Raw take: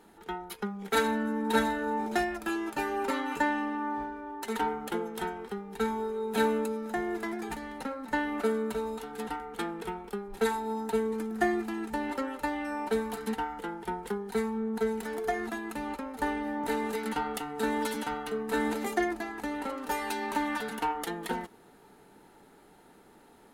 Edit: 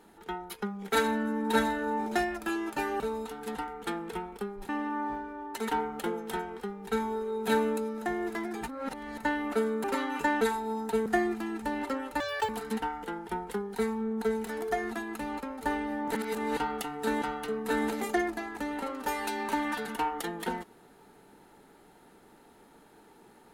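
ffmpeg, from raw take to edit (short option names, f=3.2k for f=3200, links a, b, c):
-filter_complex "[0:a]asplit=13[a][b][c][d][e][f][g][h][i][j][k][l][m];[a]atrim=end=3.002[n];[b]atrim=start=8.718:end=10.412[o];[c]atrim=start=3.568:end=7.562[p];[d]atrim=start=7.558:end=8.062,asetpts=PTS-STARTPTS,areverse[q];[e]atrim=start=8.058:end=8.722[r];[f]atrim=start=2.998:end=3.572[s];[g]atrim=start=10.408:end=11.062[t];[h]atrim=start=11.338:end=12.484[u];[i]atrim=start=12.48:end=13.05,asetpts=PTS-STARTPTS,asetrate=86877,aresample=44100[v];[j]atrim=start=13.046:end=16.712[w];[k]atrim=start=16.708:end=17.132,asetpts=PTS-STARTPTS,areverse[x];[l]atrim=start=17.128:end=17.782[y];[m]atrim=start=18.048[z];[n][o]acrossfade=d=0.004:c1=hsin:c2=hsin[aa];[aa][p]acrossfade=d=0.004:c1=hsin:c2=hsin[ab];[ab][q]acrossfade=d=0.004:c1=hsin:c2=hsin[ac];[ac][r]acrossfade=d=0.004:c1=hsin:c2=hsin[ad];[ad][s]acrossfade=d=0.004:c1=hsin:c2=hsin[ae];[ae][t]acrossfade=d=0.004:c1=hsin:c2=hsin[af];[af][u]acrossfade=d=0.004:c1=hsin:c2=hsin[ag];[ag][v]acrossfade=d=0.004:c1=hsin:c2=hsin[ah];[ah][w]acrossfade=d=0.004:c1=hsin:c2=hsin[ai];[ai][x]acrossfade=d=0.004:c1=hsin:c2=hsin[aj];[aj][y]acrossfade=d=0.004:c1=hsin:c2=hsin[ak];[ak][z]acrossfade=d=0.004:c1=hsin:c2=hsin"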